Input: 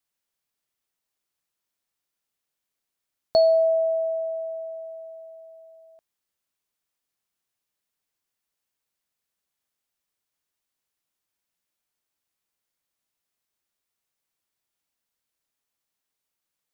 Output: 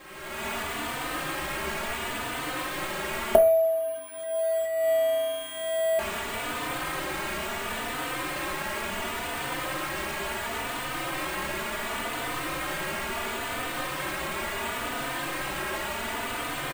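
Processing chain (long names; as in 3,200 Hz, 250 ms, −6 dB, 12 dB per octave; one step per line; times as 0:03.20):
linear delta modulator 32 kbit/s, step −31 dBFS
camcorder AGC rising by 36 dB per second
low-pass filter 2,100 Hz 12 dB per octave
low-shelf EQ 110 Hz −5 dB
convolution reverb RT60 0.30 s, pre-delay 3 ms, DRR 4 dB
bad sample-rate conversion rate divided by 4×, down none, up hold
barber-pole flanger 3.3 ms +0.71 Hz
level −3.5 dB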